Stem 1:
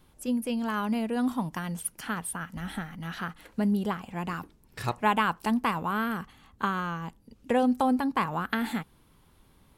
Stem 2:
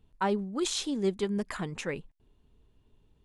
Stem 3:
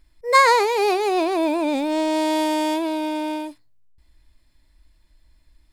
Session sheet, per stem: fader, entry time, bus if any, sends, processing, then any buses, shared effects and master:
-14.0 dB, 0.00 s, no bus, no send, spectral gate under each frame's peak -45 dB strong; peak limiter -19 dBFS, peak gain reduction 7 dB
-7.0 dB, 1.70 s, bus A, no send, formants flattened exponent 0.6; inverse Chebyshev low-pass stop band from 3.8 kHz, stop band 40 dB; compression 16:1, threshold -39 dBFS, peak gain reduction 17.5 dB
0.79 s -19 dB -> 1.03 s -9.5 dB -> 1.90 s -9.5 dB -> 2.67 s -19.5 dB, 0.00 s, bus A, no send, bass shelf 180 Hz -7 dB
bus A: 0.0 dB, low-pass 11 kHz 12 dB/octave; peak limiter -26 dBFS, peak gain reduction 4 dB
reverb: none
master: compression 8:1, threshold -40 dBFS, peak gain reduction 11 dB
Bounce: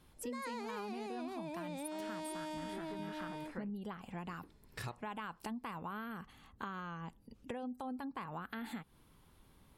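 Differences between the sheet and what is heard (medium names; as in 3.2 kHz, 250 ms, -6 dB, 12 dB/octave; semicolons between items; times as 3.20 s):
stem 1 -14.0 dB -> -4.0 dB; stem 2: missing compression 16:1, threshold -39 dBFS, peak gain reduction 17.5 dB; stem 3 -19.0 dB -> -8.5 dB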